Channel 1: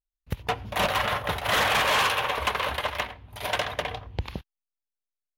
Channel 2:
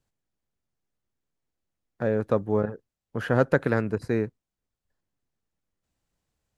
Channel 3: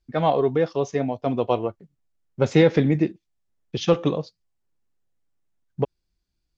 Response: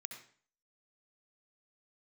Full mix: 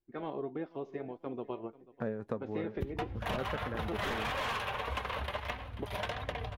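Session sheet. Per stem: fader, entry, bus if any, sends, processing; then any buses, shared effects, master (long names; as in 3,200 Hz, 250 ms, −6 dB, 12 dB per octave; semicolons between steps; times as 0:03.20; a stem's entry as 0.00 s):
+1.0 dB, 2.50 s, no send, echo send −19 dB, low-shelf EQ 160 Hz +11 dB
−5.0 dB, 0.00 s, no send, no echo send, automatic gain control gain up to 14 dB; amplitude modulation by smooth noise
−15.0 dB, 0.00 s, no send, echo send −22 dB, ceiling on every frequency bin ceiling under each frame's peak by 14 dB; low-pass filter 3,300 Hz 12 dB per octave; parametric band 360 Hz +12.5 dB 0.79 octaves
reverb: not used
echo: repeating echo 489 ms, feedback 26%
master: high-shelf EQ 4,400 Hz −8.5 dB; flanger 1.6 Hz, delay 3.6 ms, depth 1.6 ms, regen +66%; downward compressor 3 to 1, threshold −35 dBFS, peak gain reduction 12 dB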